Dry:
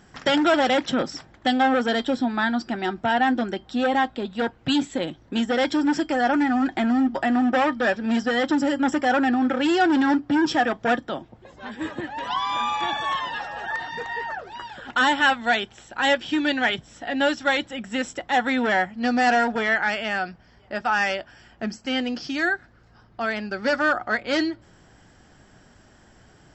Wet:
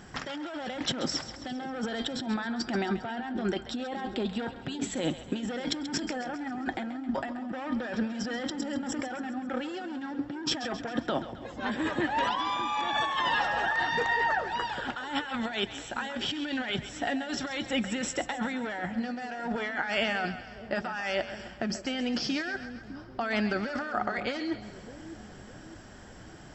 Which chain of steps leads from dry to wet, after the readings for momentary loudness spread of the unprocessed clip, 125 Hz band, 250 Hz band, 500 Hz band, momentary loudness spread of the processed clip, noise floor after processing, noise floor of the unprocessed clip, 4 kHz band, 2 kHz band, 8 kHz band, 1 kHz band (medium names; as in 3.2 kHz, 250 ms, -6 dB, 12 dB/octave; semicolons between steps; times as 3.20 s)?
10 LU, -0.5 dB, -9.0 dB, -9.0 dB, 10 LU, -47 dBFS, -54 dBFS, -5.5 dB, -8.5 dB, no reading, -9.0 dB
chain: compressor with a negative ratio -30 dBFS, ratio -1; two-band feedback delay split 530 Hz, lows 608 ms, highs 134 ms, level -12 dB; trim -2.5 dB